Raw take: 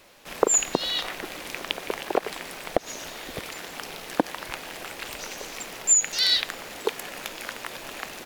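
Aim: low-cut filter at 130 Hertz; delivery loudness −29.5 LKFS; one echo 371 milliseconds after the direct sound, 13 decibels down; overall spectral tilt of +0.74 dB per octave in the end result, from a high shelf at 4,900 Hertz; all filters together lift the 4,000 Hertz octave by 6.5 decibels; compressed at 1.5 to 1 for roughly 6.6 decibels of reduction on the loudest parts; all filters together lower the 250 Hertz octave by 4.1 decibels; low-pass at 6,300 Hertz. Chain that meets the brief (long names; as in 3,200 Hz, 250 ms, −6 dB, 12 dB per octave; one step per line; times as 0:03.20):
high-pass filter 130 Hz
low-pass filter 6,300 Hz
parametric band 250 Hz −5.5 dB
parametric band 4,000 Hz +6 dB
high-shelf EQ 4,900 Hz +4.5 dB
downward compressor 1.5 to 1, threshold −31 dBFS
single-tap delay 371 ms −13 dB
level −1 dB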